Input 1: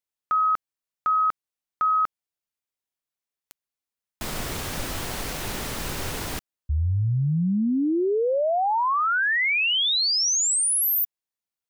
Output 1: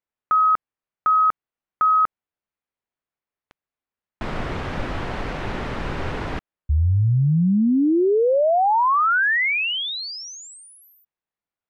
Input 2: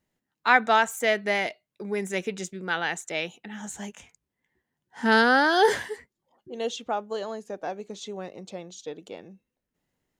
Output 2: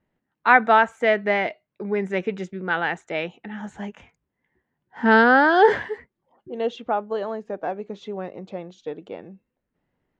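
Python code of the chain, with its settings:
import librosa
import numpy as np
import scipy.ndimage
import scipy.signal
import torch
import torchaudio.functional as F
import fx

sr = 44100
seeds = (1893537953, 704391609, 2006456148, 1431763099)

y = scipy.signal.sosfilt(scipy.signal.butter(2, 2100.0, 'lowpass', fs=sr, output='sos'), x)
y = y * librosa.db_to_amplitude(5.0)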